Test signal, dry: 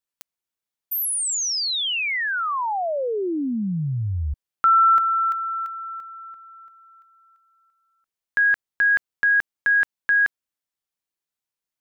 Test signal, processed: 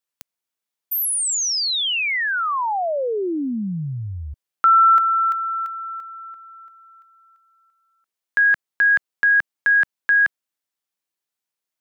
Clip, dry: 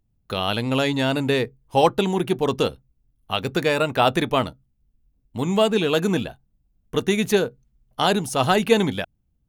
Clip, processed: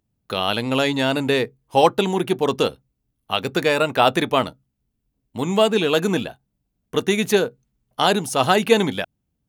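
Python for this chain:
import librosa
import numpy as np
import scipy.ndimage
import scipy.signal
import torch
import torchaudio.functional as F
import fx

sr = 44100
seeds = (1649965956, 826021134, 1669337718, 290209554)

y = fx.highpass(x, sr, hz=190.0, slope=6)
y = y * 10.0 ** (2.5 / 20.0)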